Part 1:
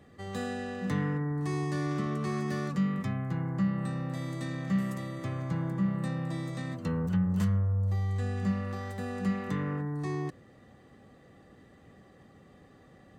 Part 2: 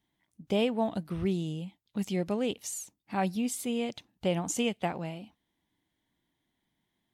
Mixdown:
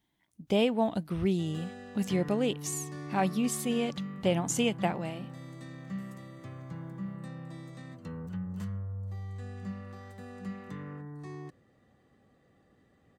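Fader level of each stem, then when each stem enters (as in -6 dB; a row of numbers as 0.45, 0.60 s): -9.5, +1.5 dB; 1.20, 0.00 s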